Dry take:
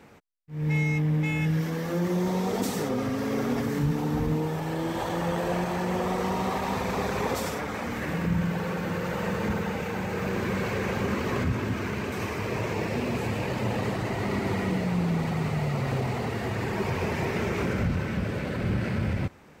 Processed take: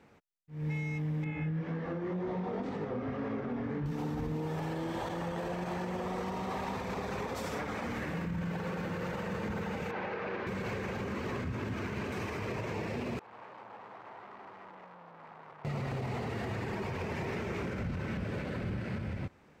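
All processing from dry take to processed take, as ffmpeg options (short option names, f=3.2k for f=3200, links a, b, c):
-filter_complex "[0:a]asettb=1/sr,asplit=3[a][b][c];[a]atrim=end=1.244[d];[b]atrim=start=1.24:end=3.86,asetpts=PTS-STARTPTS,afade=t=in:d=0.004:c=qsin,afade=t=out:st=2.616:d=0.004:c=qsin,lowpass=2.2k,flanger=delay=19:depth=6.7:speed=1.9[e];[c]atrim=start=3.856[f];[d][e]acrossfade=d=0.004:c1=hsin:c2=qsin[g];[g][f]acrossfade=d=0.004:c1=qsin:c2=hsin,asettb=1/sr,asplit=3[h][i][j];[h]atrim=end=9.914[k];[i]atrim=start=9.91:end=10.47,asetpts=PTS-STARTPTS,afade=t=in:d=0.004:c=qsin,afade=t=out:st=0.556:d=0.004:c=qsin,lowpass=f=5.6k:w=0.5412,lowpass=f=5.6k:w=1.3066,bass=f=250:g=-15,treble=f=4k:g=-12[l];[j]atrim=start=10.466[m];[k][l]acrossfade=d=0.004:c1=hsin:c2=qsin[n];[n][m]acrossfade=d=0.004:c1=qsin:c2=hsin,asettb=1/sr,asplit=3[o][p][q];[o]atrim=end=13.194[r];[p]atrim=start=13.19:end=15.65,asetpts=PTS-STARTPTS,afade=t=in:d=0.004:c=qsin,afade=t=out:st=2.456:d=0.004:c=qsin,flanger=delay=4.6:depth=2.7:regen=-86:speed=1.8:shape=triangular,aeval=exprs='(tanh(126*val(0)+0.65)-tanh(0.65))/126':c=same,bandpass=f=990:t=q:w=1.8[s];[q]atrim=start=15.646[t];[r][s]acrossfade=d=0.004:c1=hsin:c2=qsin[u];[u][t]acrossfade=d=0.004:c1=qsin:c2=hsin,highshelf=f=8.6k:g=-9.5,dynaudnorm=f=200:g=13:m=11.5dB,alimiter=limit=-19.5dB:level=0:latency=1:release=192,volume=-8.5dB"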